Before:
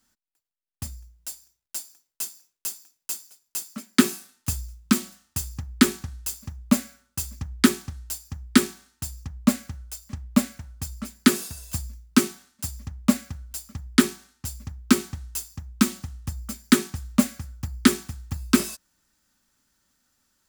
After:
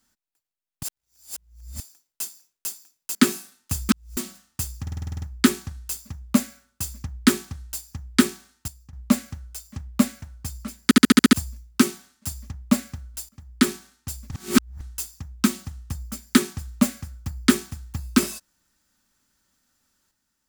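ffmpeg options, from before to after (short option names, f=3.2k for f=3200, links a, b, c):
-filter_complex "[0:a]asplit=26[a][b][c][d][e][f][g][h][i][j][k][l][m][n][o][p][q][r][s][t][u][v][w][x][y][z];[a]atrim=end=0.832[aa];[b]atrim=start=0.828:end=1.802,asetpts=PTS-STARTPTS,areverse[ab];[c]atrim=start=1.798:end=3.152[ac];[d]atrim=start=3.918:end=4.662[ad];[e]atrim=start=4.658:end=4.942,asetpts=PTS-STARTPTS,areverse[ae];[f]atrim=start=4.938:end=5.642[af];[g]atrim=start=5.588:end=5.642[ag];[h]atrim=start=5.588:end=5.642[ah];[i]atrim=start=5.588:end=5.642[ai];[j]atrim=start=5.588:end=5.642[aj];[k]atrim=start=5.588:end=5.642[ak];[l]atrim=start=5.588:end=5.642[al];[m]atrim=start=5.588:end=5.642[am];[n]atrim=start=5.588:end=9.052[an];[o]atrim=start=9.048:end=9.302,asetpts=PTS-STARTPTS,volume=-11dB[ao];[p]atrim=start=9.298:end=11.282[ap];[q]atrim=start=11.208:end=11.282[aq];[r]atrim=start=11.208:end=11.282[ar];[s]atrim=start=11.208:end=11.282[as];[t]atrim=start=11.208:end=11.282[at];[u]atrim=start=11.208:end=11.282[au];[v]atrim=start=11.208:end=11.282[av];[w]atrim=start=11.698:end=13.66,asetpts=PTS-STARTPTS,afade=t=out:st=1.958:d=0.004:c=hsin:silence=0.125893[aw];[x]atrim=start=13.66:end=14.682,asetpts=PTS-STARTPTS,afade=t=in:d=0.42:silence=0.125893[ax];[y]atrim=start=14.678:end=15.182,asetpts=PTS-STARTPTS,areverse[ay];[z]atrim=start=15.178[az];[aa][ab]acrossfade=d=0.004:c1=hsin:c2=hsin[ba];[ba][ac]acrossfade=d=0.004:c1=hsin:c2=hsin[bb];[bb][ad]acrossfade=d=0.004:c1=hsin:c2=hsin[bc];[bc][ae]acrossfade=d=0.004:c1=hsin:c2=hsin[bd];[bd][af]acrossfade=d=0.004:c1=hsin:c2=hsin[be];[be][ag]acrossfade=d=0.004:c1=hsin:c2=hsin[bf];[bf][ah]acrossfade=d=0.004:c1=hsin:c2=hsin[bg];[bg][ai]acrossfade=d=0.004:c1=hsin:c2=hsin[bh];[bh][aj]acrossfade=d=0.004:c1=hsin:c2=hsin[bi];[bi][ak]acrossfade=d=0.004:c1=hsin:c2=hsin[bj];[bj][al]acrossfade=d=0.004:c1=hsin:c2=hsin[bk];[bk][am]acrossfade=d=0.004:c1=hsin:c2=hsin[bl];[bl][an]acrossfade=d=0.004:c1=hsin:c2=hsin[bm];[bm][ao]acrossfade=d=0.004:c1=hsin:c2=hsin[bn];[bn][ap]acrossfade=d=0.004:c1=hsin:c2=hsin[bo];[bo][aq]acrossfade=d=0.004:c1=hsin:c2=hsin[bp];[bp][ar]acrossfade=d=0.004:c1=hsin:c2=hsin[bq];[bq][as]acrossfade=d=0.004:c1=hsin:c2=hsin[br];[br][at]acrossfade=d=0.004:c1=hsin:c2=hsin[bs];[bs][au]acrossfade=d=0.004:c1=hsin:c2=hsin[bt];[bt][av]acrossfade=d=0.004:c1=hsin:c2=hsin[bu];[aw][ax]concat=n=2:v=0:a=1[bv];[bu][bv]acrossfade=d=0.004:c1=hsin:c2=hsin[bw];[bw][ay]acrossfade=d=0.004:c1=hsin:c2=hsin[bx];[bx][az]acrossfade=d=0.004:c1=hsin:c2=hsin"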